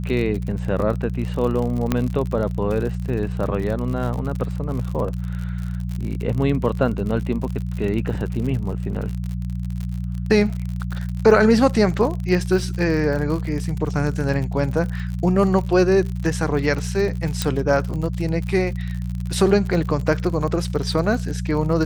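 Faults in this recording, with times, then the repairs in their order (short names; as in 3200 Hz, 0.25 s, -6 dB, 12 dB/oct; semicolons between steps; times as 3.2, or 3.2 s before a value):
crackle 58/s -27 dBFS
hum 60 Hz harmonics 3 -26 dBFS
1.92 pop -6 dBFS
17.42 pop -6 dBFS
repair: de-click; de-hum 60 Hz, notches 3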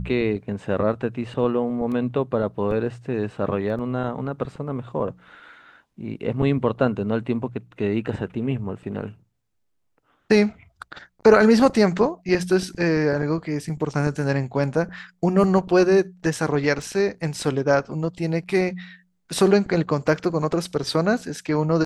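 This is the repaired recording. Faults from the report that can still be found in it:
1.92 pop
17.42 pop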